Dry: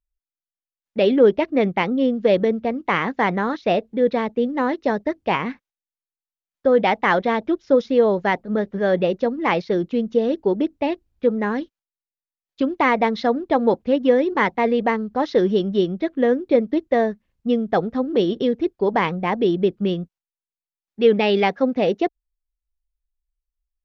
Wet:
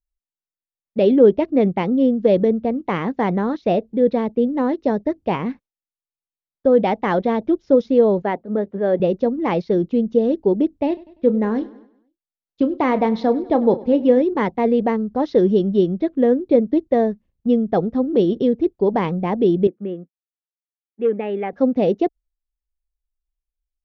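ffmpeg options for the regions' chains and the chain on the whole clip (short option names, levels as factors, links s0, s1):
-filter_complex "[0:a]asettb=1/sr,asplit=3[s0][s1][s2];[s0]atrim=end=8.224[s3];[s1]atrim=start=8.22:end=9,asetpts=PTS-STARTPTS,afade=t=in:d=0.004:c=qsin,afade=t=out:st=0.776:d=0.004:c=qsin,highpass=61,bass=f=250:g=-6,treble=f=4000:g=-12,bandreject=f=160:w=5.3[s4];[s2]atrim=start=8.996[s5];[s3][s4]acrossfade=d=0.004:c1=hsin:c2=qsin[s6];[s6][s5]acrossfade=d=0.004:c1=qsin:c2=hsin,asettb=1/sr,asplit=3[s7][s8][s9];[s7]atrim=end=10.874[s10];[s8]atrim=start=10.87:end=14.22,asetpts=PTS-STARTPTS,afade=t=in:d=0.004:c=qsin,afade=t=out:st=3.346:d=0.004:c=qsin,asplit=2[s11][s12];[s12]adelay=32,volume=0.224[s13];[s11][s13]amix=inputs=2:normalize=0,atrim=end_sample=147735,aecho=1:1:98|196|294|392|490:0.1|0.058|0.0336|0.0195|0.0113,atrim=end_sample=147735[s14];[s9]atrim=start=14.216[s15];[s10][s14]acrossfade=d=0.004:c1=hsin:c2=qsin[s16];[s16][s15]acrossfade=d=0.004:c1=qsin:c2=hsin,asettb=1/sr,asplit=3[s17][s18][s19];[s17]atrim=end=19.674[s20];[s18]atrim=start=19.67:end=21.53,asetpts=PTS-STARTPTS,afade=t=in:d=0.004:c=qsin,afade=t=out:st=1.856:d=0.004:c=qsin,asoftclip=type=hard:threshold=0.398,highpass=370,equalizer=f=410:t=q:w=4:g=-5,equalizer=f=650:t=q:w=4:g=-7,equalizer=f=950:t=q:w=4:g=-9,equalizer=f=1400:t=q:w=4:g=-3,lowpass=f=2100:w=0.5412,lowpass=f=2100:w=1.3066[s21];[s19]atrim=start=21.526[s22];[s20][s21]acrossfade=d=0.004:c1=hsin:c2=qsin[s23];[s23][s22]acrossfade=d=0.004:c1=qsin:c2=hsin,lowpass=f=2400:p=1,agate=range=0.501:threshold=0.00447:ratio=16:detection=peak,equalizer=f=1700:t=o:w=2.3:g=-10.5,volume=1.68"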